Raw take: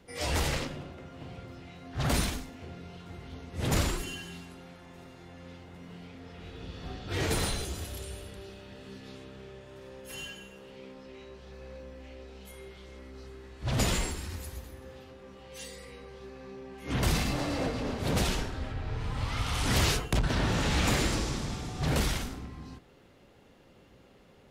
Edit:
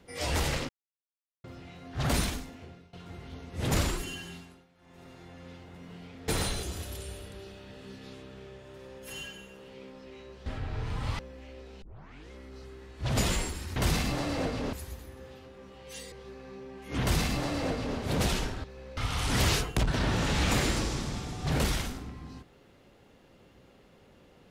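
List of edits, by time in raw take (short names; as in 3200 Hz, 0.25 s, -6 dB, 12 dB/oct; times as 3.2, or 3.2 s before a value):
0.69–1.44 mute
2.51–2.93 fade out, to -19.5 dB
4.31–5.11 dip -16 dB, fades 0.36 s
6.28–7.3 cut
11.48–11.81 swap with 18.6–19.33
12.44 tape start 0.49 s
15.77–16.08 cut
16.97–17.94 copy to 14.38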